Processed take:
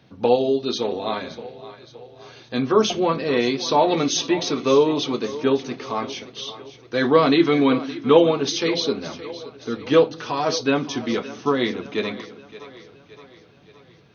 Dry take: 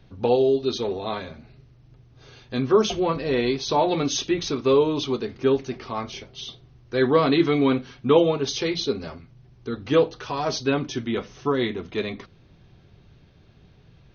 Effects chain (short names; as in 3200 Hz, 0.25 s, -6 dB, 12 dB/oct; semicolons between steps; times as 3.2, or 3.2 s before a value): HPF 170 Hz 12 dB/oct; notch 390 Hz, Q 12; on a send: split-band echo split 310 Hz, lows 0.191 s, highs 0.569 s, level -15.5 dB; on the sum: gain +3.5 dB